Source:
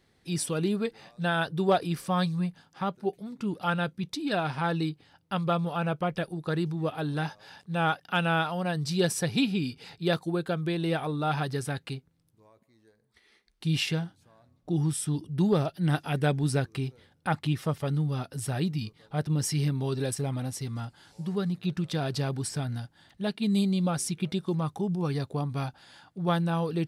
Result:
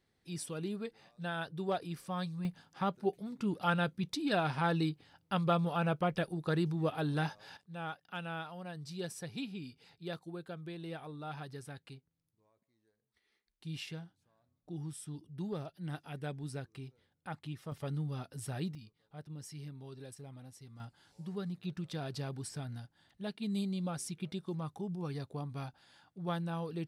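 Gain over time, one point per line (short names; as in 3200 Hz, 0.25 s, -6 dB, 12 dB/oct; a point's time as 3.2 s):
-11 dB
from 2.45 s -3 dB
from 7.57 s -15 dB
from 17.72 s -9 dB
from 18.75 s -19 dB
from 20.8 s -10 dB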